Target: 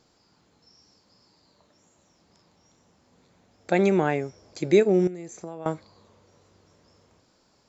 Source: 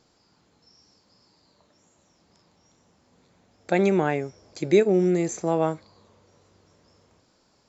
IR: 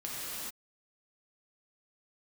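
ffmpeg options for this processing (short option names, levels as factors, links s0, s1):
-filter_complex "[0:a]asettb=1/sr,asplit=3[s0][s1][s2];[s0]atrim=end=5.074[s3];[s1]atrim=start=5.07:end=5.66,asetpts=PTS-STARTPTS,afade=t=in:d=0.004:c=qsin,afade=t=out:st=0.586:d=0.004:c=qsin,acompressor=threshold=0.0158:ratio=5[s4];[s2]atrim=start=5.656[s5];[s3][s4]acrossfade=d=0.004:c1=hsin:c2=qsin[s6];[s6][s5]acrossfade=d=0.004:c1=qsin:c2=hsin"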